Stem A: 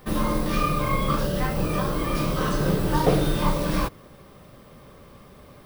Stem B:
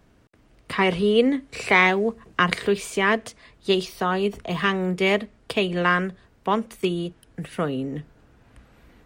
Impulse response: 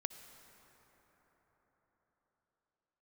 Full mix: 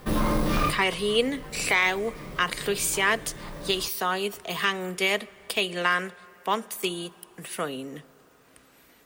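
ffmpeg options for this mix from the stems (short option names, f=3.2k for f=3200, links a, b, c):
-filter_complex "[0:a]aeval=exprs='0.447*sin(PI/2*3.16*val(0)/0.447)':c=same,volume=-11.5dB[a];[1:a]aemphasis=mode=production:type=riaa,alimiter=limit=-9dB:level=0:latency=1:release=128,volume=-4.5dB,asplit=3[b][c][d];[c]volume=-9dB[e];[d]apad=whole_len=249436[f];[a][f]sidechaincompress=threshold=-40dB:ratio=16:attack=21:release=1080[g];[2:a]atrim=start_sample=2205[h];[e][h]afir=irnorm=-1:irlink=0[i];[g][b][i]amix=inputs=3:normalize=0,highshelf=f=10k:g=-3"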